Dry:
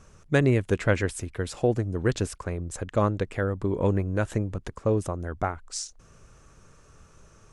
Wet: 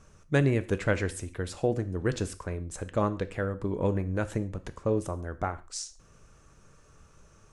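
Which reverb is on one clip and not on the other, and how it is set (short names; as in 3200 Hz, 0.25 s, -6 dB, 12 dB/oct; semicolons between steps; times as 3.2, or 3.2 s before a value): non-linear reverb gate 0.16 s falling, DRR 11 dB; gain -3.5 dB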